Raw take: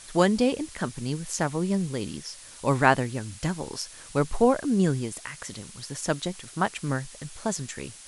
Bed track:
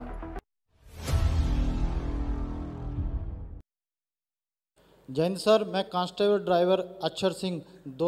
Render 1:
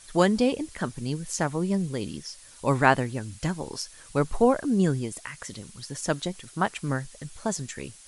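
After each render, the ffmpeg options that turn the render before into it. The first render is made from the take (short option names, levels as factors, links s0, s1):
-af "afftdn=nr=6:nf=-47"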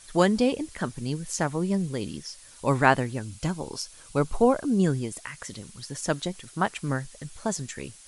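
-filter_complex "[0:a]asettb=1/sr,asplit=3[s0][s1][s2];[s0]atrim=end=3.224[s3];[s1]atrim=start=3.22:end=4.83,asetpts=PTS-STARTPTS,afade=t=in:d=0.004:c=qsin,afade=t=out:st=1.606:d=0.004:c=qsin,equalizer=f=1800:t=o:w=0.2:g=-9.5[s4];[s2]atrim=start=4.826[s5];[s3][s4]acrossfade=d=0.004:c1=hsin:c2=qsin[s6];[s6][s5]acrossfade=d=0.004:c1=qsin:c2=hsin"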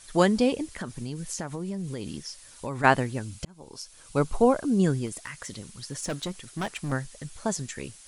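-filter_complex "[0:a]asplit=3[s0][s1][s2];[s0]afade=t=out:st=0.66:d=0.02[s3];[s1]acompressor=threshold=0.0355:ratio=6:attack=3.2:release=140:knee=1:detection=peak,afade=t=in:st=0.66:d=0.02,afade=t=out:st=2.83:d=0.02[s4];[s2]afade=t=in:st=2.83:d=0.02[s5];[s3][s4][s5]amix=inputs=3:normalize=0,asettb=1/sr,asplit=3[s6][s7][s8];[s6]atrim=end=5.064[s9];[s7]atrim=start=5.06:end=6.92,asetpts=PTS-STARTPTS,afade=t=in:d=0.004:c=qsin,afade=t=out:st=1.856:d=0.004:c=qsin,asoftclip=type=hard:threshold=0.0473[s10];[s8]atrim=start=6.916[s11];[s9][s10]acrossfade=d=0.004:c1=hsin:c2=qsin[s12];[s12][s11]acrossfade=d=0.004:c1=qsin:c2=hsin,asplit=2[s13][s14];[s13]atrim=end=3.45,asetpts=PTS-STARTPTS,afade=t=out:st=3.446:d=0.004:c=hsin[s15];[s14]atrim=start=3.45,asetpts=PTS-STARTPTS,afade=t=in:d=0.73[s16];[s15][s16]concat=n=2:v=0:a=1"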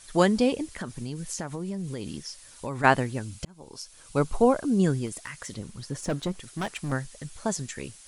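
-filter_complex "[0:a]asettb=1/sr,asplit=3[s0][s1][s2];[s0]atrim=end=5.544[s3];[s1]atrim=start=5.54:end=6.4,asetpts=PTS-STARTPTS,afade=t=in:d=0.004:c=qsin,afade=t=out:st=0.856:d=0.004:c=qsin,tiltshelf=f=1500:g=4.5[s4];[s2]atrim=start=6.396[s5];[s3][s4]acrossfade=d=0.004:c1=hsin:c2=qsin[s6];[s6][s5]acrossfade=d=0.004:c1=qsin:c2=hsin"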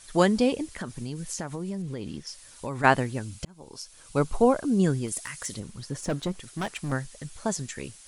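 -filter_complex "[0:a]asettb=1/sr,asplit=3[s0][s1][s2];[s0]atrim=end=1.824[s3];[s1]atrim=start=1.82:end=2.27,asetpts=PTS-STARTPTS,afade=t=in:d=0.004:c=qsin,afade=t=out:st=0.446:d=0.004:c=qsin,highshelf=f=5400:g=-11.5[s4];[s2]atrim=start=2.266[s5];[s3][s4]acrossfade=d=0.004:c1=hsin:c2=qsin[s6];[s6][s5]acrossfade=d=0.004:c1=qsin:c2=hsin,asettb=1/sr,asplit=3[s7][s8][s9];[s7]atrim=end=5.084[s10];[s8]atrim=start=5.08:end=5.6,asetpts=PTS-STARTPTS,afade=t=in:d=0.004:c=qsin,afade=t=out:st=0.516:d=0.004:c=qsin,aemphasis=mode=production:type=cd[s11];[s9]atrim=start=5.596[s12];[s10][s11]acrossfade=d=0.004:c1=hsin:c2=qsin[s13];[s13][s12]acrossfade=d=0.004:c1=qsin:c2=hsin"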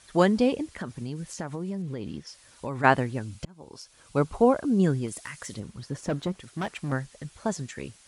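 -af "highpass=45,aemphasis=mode=reproduction:type=cd"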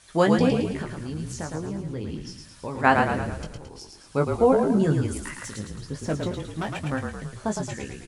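-filter_complex "[0:a]asplit=2[s0][s1];[s1]adelay=19,volume=0.501[s2];[s0][s2]amix=inputs=2:normalize=0,asplit=8[s3][s4][s5][s6][s7][s8][s9][s10];[s4]adelay=110,afreqshift=-36,volume=0.596[s11];[s5]adelay=220,afreqshift=-72,volume=0.305[s12];[s6]adelay=330,afreqshift=-108,volume=0.155[s13];[s7]adelay=440,afreqshift=-144,volume=0.0794[s14];[s8]adelay=550,afreqshift=-180,volume=0.0403[s15];[s9]adelay=660,afreqshift=-216,volume=0.0207[s16];[s10]adelay=770,afreqshift=-252,volume=0.0105[s17];[s3][s11][s12][s13][s14][s15][s16][s17]amix=inputs=8:normalize=0"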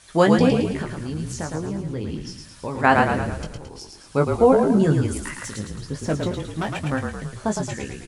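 -af "volume=1.5,alimiter=limit=0.708:level=0:latency=1"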